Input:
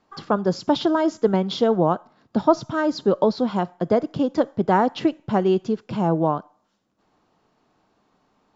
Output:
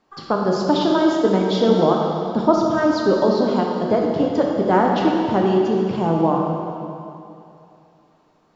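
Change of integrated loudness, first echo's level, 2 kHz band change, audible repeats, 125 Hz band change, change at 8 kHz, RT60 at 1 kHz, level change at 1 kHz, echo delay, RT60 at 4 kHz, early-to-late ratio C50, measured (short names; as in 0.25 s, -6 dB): +3.5 dB, none, +4.0 dB, none, +2.5 dB, n/a, 2.7 s, +3.0 dB, none, 2.5 s, 0.5 dB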